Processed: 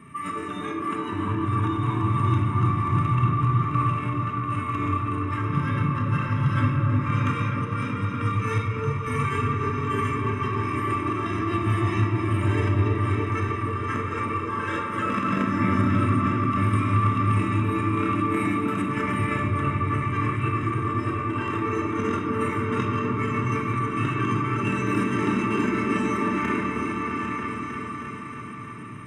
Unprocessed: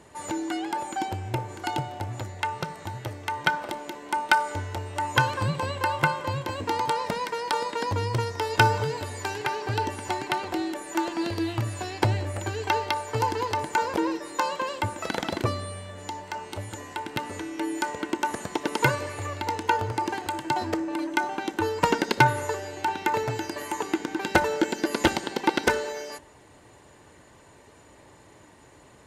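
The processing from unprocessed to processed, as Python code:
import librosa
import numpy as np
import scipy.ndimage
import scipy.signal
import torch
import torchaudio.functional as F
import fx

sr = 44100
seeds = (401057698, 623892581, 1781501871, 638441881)

p1 = fx.reverse_delay_fb(x, sr, ms=401, feedback_pct=53, wet_db=-8)
p2 = scipy.signal.sosfilt(scipy.signal.butter(2, 130.0, 'highpass', fs=sr, output='sos'), p1)
p3 = p2 + 0.81 * np.pad(p2, (int(1.0 * sr / 1000.0), 0))[:len(p2)]
p4 = fx.hpss(p3, sr, part='percussive', gain_db=-10)
p5 = fx.over_compress(p4, sr, threshold_db=-33.0, ratio=-1.0)
p6 = fx.formant_shift(p5, sr, semitones=4)
p7 = fx.spacing_loss(p6, sr, db_at_10k=20)
p8 = fx.fixed_phaser(p7, sr, hz=1900.0, stages=4)
p9 = p8 + fx.echo_opening(p8, sr, ms=314, hz=750, octaves=1, feedback_pct=70, wet_db=0, dry=0)
p10 = fx.room_shoebox(p9, sr, seeds[0], volume_m3=950.0, walls='mixed', distance_m=1.6)
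y = F.gain(torch.from_numpy(p10), 5.5).numpy()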